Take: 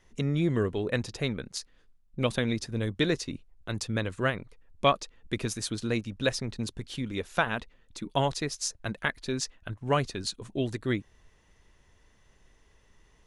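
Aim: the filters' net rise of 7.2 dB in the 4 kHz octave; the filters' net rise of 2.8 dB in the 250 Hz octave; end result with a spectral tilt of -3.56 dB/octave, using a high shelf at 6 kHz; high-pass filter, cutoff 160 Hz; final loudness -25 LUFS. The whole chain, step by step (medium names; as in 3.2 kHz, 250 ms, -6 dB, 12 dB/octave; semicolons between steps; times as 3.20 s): high-pass 160 Hz; peaking EQ 250 Hz +4.5 dB; peaking EQ 4 kHz +7.5 dB; treble shelf 6 kHz +3.5 dB; trim +3.5 dB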